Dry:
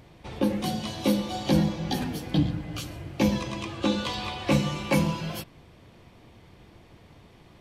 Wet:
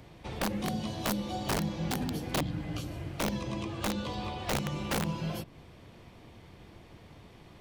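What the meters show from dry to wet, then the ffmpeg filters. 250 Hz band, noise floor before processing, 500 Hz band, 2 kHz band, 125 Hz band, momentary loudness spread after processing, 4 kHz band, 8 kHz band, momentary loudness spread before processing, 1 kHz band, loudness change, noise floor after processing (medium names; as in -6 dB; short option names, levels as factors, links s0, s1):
-8.0 dB, -54 dBFS, -6.5 dB, -3.5 dB, -6.0 dB, 21 LU, -5.5 dB, -0.5 dB, 11 LU, -3.0 dB, -6.0 dB, -54 dBFS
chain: -filter_complex "[0:a]acrossover=split=150|840[s0][s1][s2];[s0]acompressor=threshold=0.0178:ratio=4[s3];[s1]acompressor=threshold=0.0251:ratio=4[s4];[s2]acompressor=threshold=0.00631:ratio=4[s5];[s3][s4][s5]amix=inputs=3:normalize=0,aeval=exprs='(mod(15*val(0)+1,2)-1)/15':c=same"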